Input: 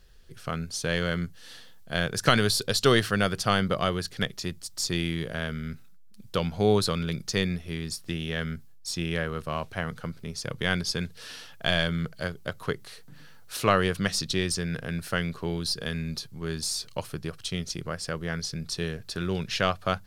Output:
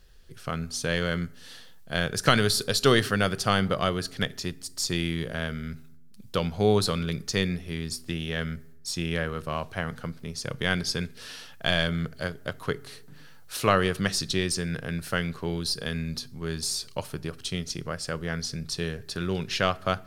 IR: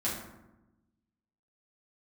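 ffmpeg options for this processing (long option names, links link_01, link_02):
-filter_complex "[0:a]asplit=2[link_01][link_02];[1:a]atrim=start_sample=2205,asetrate=52920,aresample=44100,highshelf=frequency=5800:gain=10.5[link_03];[link_02][link_03]afir=irnorm=-1:irlink=0,volume=-23dB[link_04];[link_01][link_04]amix=inputs=2:normalize=0"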